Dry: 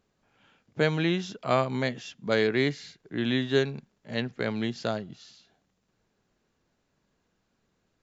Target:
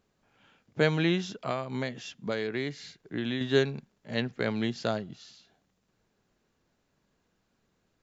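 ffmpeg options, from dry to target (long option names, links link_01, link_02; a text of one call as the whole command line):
ffmpeg -i in.wav -filter_complex "[0:a]asettb=1/sr,asplit=3[link_01][link_02][link_03];[link_01]atrim=end=1.344[link_04];[link_02]atrim=start=1.34:end=3.41,asetpts=PTS-STARTPTS,afade=type=in:duration=0.004:curve=qsin,afade=type=out:start_time=2.066:duration=0.004:curve=qsin,acompressor=threshold=-28dB:ratio=6[link_05];[link_03]atrim=start=3.406[link_06];[link_04][link_05]acrossfade=duration=0.004:curve1=hsin:curve2=qsin[link_07];[link_07][link_06]acrossfade=duration=0.004:curve1=qsin:curve2=hsin" out.wav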